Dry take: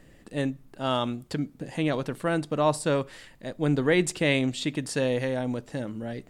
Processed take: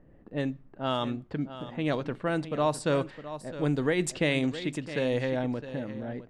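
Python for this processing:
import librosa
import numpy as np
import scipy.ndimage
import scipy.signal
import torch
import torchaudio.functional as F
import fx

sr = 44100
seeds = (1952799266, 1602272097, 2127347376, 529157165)

y = fx.env_lowpass(x, sr, base_hz=970.0, full_db=-19.0)
y = y + 10.0 ** (-13.0 / 20.0) * np.pad(y, (int(661 * sr / 1000.0), 0))[:len(y)]
y = fx.am_noise(y, sr, seeds[0], hz=5.7, depth_pct=55)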